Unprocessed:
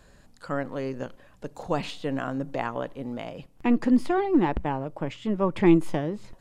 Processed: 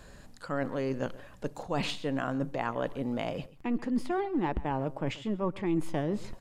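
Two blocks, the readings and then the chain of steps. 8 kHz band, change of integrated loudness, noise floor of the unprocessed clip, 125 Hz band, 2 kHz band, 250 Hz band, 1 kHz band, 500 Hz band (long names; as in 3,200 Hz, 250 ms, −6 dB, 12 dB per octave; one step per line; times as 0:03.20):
can't be measured, −6.0 dB, −56 dBFS, −3.5 dB, −3.5 dB, −7.0 dB, −4.0 dB, −5.0 dB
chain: reversed playback
downward compressor 5 to 1, threshold −32 dBFS, peak gain reduction 17 dB
reversed playback
slap from a distant wall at 23 metres, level −19 dB
level +4 dB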